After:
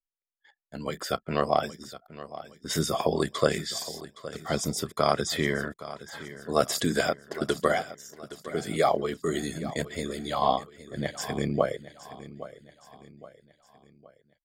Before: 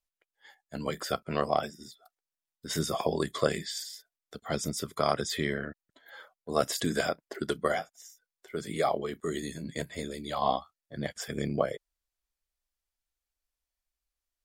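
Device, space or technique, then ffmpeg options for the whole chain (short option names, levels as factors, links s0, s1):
voice memo with heavy noise removal: -filter_complex "[0:a]asettb=1/sr,asplit=3[s0][s1][s2];[s0]atrim=end=5.364[s3];[s1]atrim=start=5.36:end=6.19,asetpts=PTS-STARTPTS,afade=t=in:d=0.004:c=qsin,afade=t=out:st=0.826:d=0.004:c=qsin,equalizer=f=1000:t=o:w=0.57:g=9.5[s4];[s2]atrim=start=6.186[s5];[s3][s4]acrossfade=d=0.004:c1=hsin:c2=qsin[s6];[s6][s5]acrossfade=d=0.004:c1=qsin:c2=hsin,anlmdn=0.001,dynaudnorm=f=210:g=9:m=2.82,aecho=1:1:817|1634|2451|3268:0.168|0.0739|0.0325|0.0143,volume=0.631"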